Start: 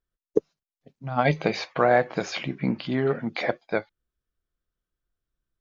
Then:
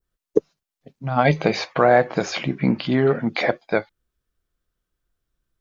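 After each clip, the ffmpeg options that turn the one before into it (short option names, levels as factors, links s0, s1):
-filter_complex "[0:a]adynamicequalizer=threshold=0.01:dfrequency=2800:dqfactor=0.77:tfrequency=2800:tqfactor=0.77:attack=5:release=100:ratio=0.375:range=2:mode=cutabove:tftype=bell,asplit=2[s0][s1];[s1]alimiter=limit=0.168:level=0:latency=1,volume=0.708[s2];[s0][s2]amix=inputs=2:normalize=0,volume=1.26"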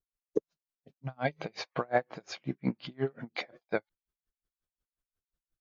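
-af "aeval=exprs='val(0)*pow(10,-35*(0.5-0.5*cos(2*PI*5.6*n/s))/20)':c=same,volume=0.376"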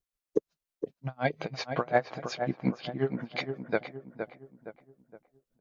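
-filter_complex "[0:a]asplit=2[s0][s1];[s1]adelay=466,lowpass=f=1700:p=1,volume=0.447,asplit=2[s2][s3];[s3]adelay=466,lowpass=f=1700:p=1,volume=0.43,asplit=2[s4][s5];[s5]adelay=466,lowpass=f=1700:p=1,volume=0.43,asplit=2[s6][s7];[s7]adelay=466,lowpass=f=1700:p=1,volume=0.43,asplit=2[s8][s9];[s9]adelay=466,lowpass=f=1700:p=1,volume=0.43[s10];[s0][s2][s4][s6][s8][s10]amix=inputs=6:normalize=0,volume=1.33"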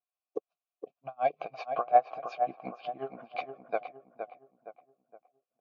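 -filter_complex "[0:a]asplit=3[s0][s1][s2];[s0]bandpass=f=730:t=q:w=8,volume=1[s3];[s1]bandpass=f=1090:t=q:w=8,volume=0.501[s4];[s2]bandpass=f=2440:t=q:w=8,volume=0.355[s5];[s3][s4][s5]amix=inputs=3:normalize=0,volume=2.51"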